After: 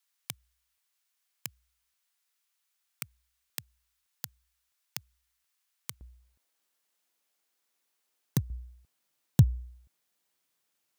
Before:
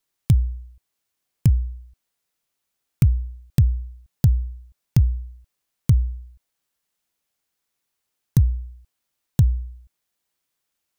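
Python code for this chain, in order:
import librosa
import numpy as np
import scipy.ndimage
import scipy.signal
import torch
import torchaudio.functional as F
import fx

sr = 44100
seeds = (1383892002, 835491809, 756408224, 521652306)

y = fx.highpass(x, sr, hz=fx.steps((0.0, 1100.0), (6.01, 260.0), (8.5, 120.0)), slope=12)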